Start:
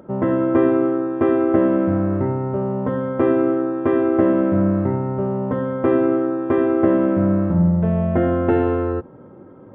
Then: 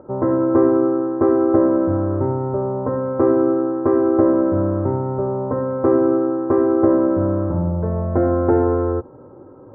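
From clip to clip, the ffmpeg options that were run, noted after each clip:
-af "lowpass=f=1.3k:w=0.5412,lowpass=f=1.3k:w=1.3066,equalizer=f=190:t=o:w=0.55:g=-13,bandreject=f=670:w=15,volume=3dB"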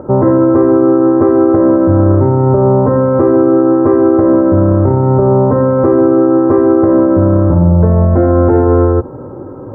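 -af "bass=f=250:g=4,treble=f=4k:g=3,alimiter=level_in=14.5dB:limit=-1dB:release=50:level=0:latency=1,volume=-1dB"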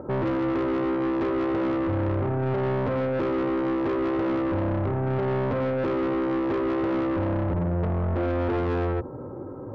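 -af "asoftclip=type=tanh:threshold=-14dB,volume=-9dB"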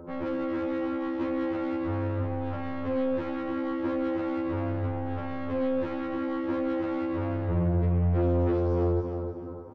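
-filter_complex "[0:a]asplit=2[a][b];[b]aecho=0:1:309|618|927|1236:0.447|0.147|0.0486|0.0161[c];[a][c]amix=inputs=2:normalize=0,afftfilt=real='re*2*eq(mod(b,4),0)':imag='im*2*eq(mod(b,4),0)':win_size=2048:overlap=0.75,volume=-3.5dB"

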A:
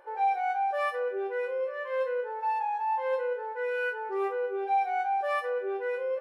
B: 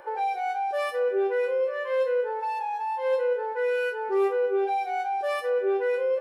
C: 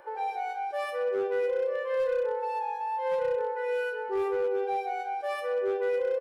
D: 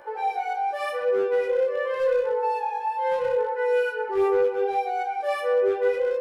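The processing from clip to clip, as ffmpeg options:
-filter_complex "[0:a]acrossover=split=490|3000[a][b][c];[b]acompressor=threshold=-41dB:ratio=6[d];[a][d][c]amix=inputs=3:normalize=0,volume=9dB"
-filter_complex "[0:a]asplit=2[a][b];[b]adelay=124,lowpass=f=1.6k:p=1,volume=-5dB,asplit=2[c][d];[d]adelay=124,lowpass=f=1.6k:p=1,volume=0.55,asplit=2[e][f];[f]adelay=124,lowpass=f=1.6k:p=1,volume=0.55,asplit=2[g][h];[h]adelay=124,lowpass=f=1.6k:p=1,volume=0.55,asplit=2[i][j];[j]adelay=124,lowpass=f=1.6k:p=1,volume=0.55,asplit=2[k][l];[l]adelay=124,lowpass=f=1.6k:p=1,volume=0.55,asplit=2[m][n];[n]adelay=124,lowpass=f=1.6k:p=1,volume=0.55[o];[a][c][e][g][i][k][m][o]amix=inputs=8:normalize=0,volume=18dB,asoftclip=hard,volume=-18dB,volume=-5dB"
-af "flanger=delay=16:depth=4.5:speed=0.81,volume=8dB"

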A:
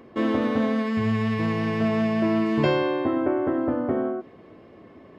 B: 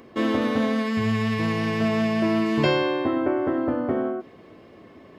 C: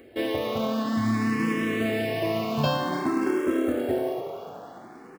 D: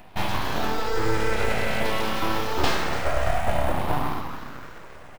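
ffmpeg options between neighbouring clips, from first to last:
-af "highshelf=f=3.1k:g=9.5"
-filter_complex "[0:a]acrusher=bits=6:mode=log:mix=0:aa=0.000001,asplit=2[a][b];[b]asplit=8[c][d][e][f][g][h][i][j];[c]adelay=289,afreqshift=32,volume=-10dB[k];[d]adelay=578,afreqshift=64,volume=-13.9dB[l];[e]adelay=867,afreqshift=96,volume=-17.8dB[m];[f]adelay=1156,afreqshift=128,volume=-21.6dB[n];[g]adelay=1445,afreqshift=160,volume=-25.5dB[o];[h]adelay=1734,afreqshift=192,volume=-29.4dB[p];[i]adelay=2023,afreqshift=224,volume=-33.3dB[q];[j]adelay=2312,afreqshift=256,volume=-37.1dB[r];[k][l][m][n][o][p][q][r]amix=inputs=8:normalize=0[s];[a][s]amix=inputs=2:normalize=0,asplit=2[t][u];[u]afreqshift=0.53[v];[t][v]amix=inputs=2:normalize=1"
-af "aeval=exprs='abs(val(0))':c=same,volume=4.5dB"

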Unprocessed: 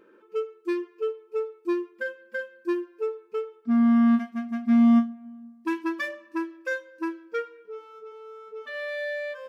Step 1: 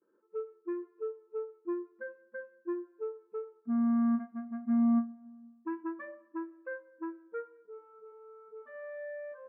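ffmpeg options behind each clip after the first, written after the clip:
-af "lowpass=f=1.5k:w=0.5412,lowpass=f=1.5k:w=1.3066,aemphasis=mode=reproduction:type=50fm,agate=range=-33dB:threshold=-50dB:ratio=3:detection=peak,volume=-9dB"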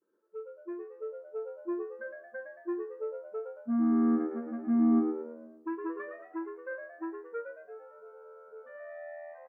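-filter_complex "[0:a]dynaudnorm=f=270:g=9:m=5.5dB,asplit=6[a][b][c][d][e][f];[b]adelay=112,afreqshift=81,volume=-7dB[g];[c]adelay=224,afreqshift=162,volume=-14.5dB[h];[d]adelay=336,afreqshift=243,volume=-22.1dB[i];[e]adelay=448,afreqshift=324,volume=-29.6dB[j];[f]adelay=560,afreqshift=405,volume=-37.1dB[k];[a][g][h][i][j][k]amix=inputs=6:normalize=0,volume=-4.5dB"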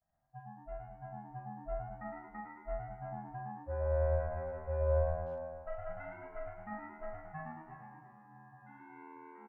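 -filter_complex "[0:a]aecho=1:1:40|104|206.4|370.2|632.4:0.631|0.398|0.251|0.158|0.1,aeval=exprs='val(0)*sin(2*PI*310*n/s)':c=same,asplit=2[a][b];[b]adelay=360,highpass=300,lowpass=3.4k,asoftclip=type=hard:threshold=-22dB,volume=-9dB[c];[a][c]amix=inputs=2:normalize=0,volume=-4.5dB"

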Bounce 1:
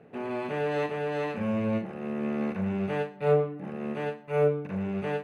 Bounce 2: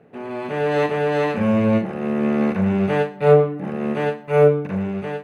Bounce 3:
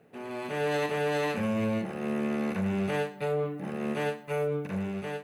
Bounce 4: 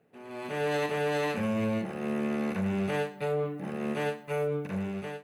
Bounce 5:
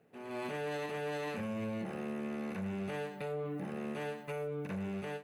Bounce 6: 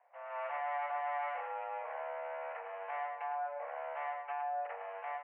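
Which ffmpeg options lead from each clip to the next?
-af "equalizer=f=2.6k:t=o:w=0.21:g=-2.5,dynaudnorm=f=170:g=7:m=8.5dB,volume=2dB"
-af "alimiter=limit=-13.5dB:level=0:latency=1:release=33,crystalizer=i=3.5:c=0,volume=-8.5dB"
-af "dynaudnorm=f=240:g=3:m=7.5dB,volume=-8dB"
-af "alimiter=level_in=7dB:limit=-24dB:level=0:latency=1:release=115,volume=-7dB"
-filter_complex "[0:a]asplit=2[a][b];[b]aecho=0:1:106:0.398[c];[a][c]amix=inputs=2:normalize=0,highpass=f=300:t=q:w=0.5412,highpass=f=300:t=q:w=1.307,lowpass=f=2k:t=q:w=0.5176,lowpass=f=2k:t=q:w=0.7071,lowpass=f=2k:t=q:w=1.932,afreqshift=280,volume=1dB"

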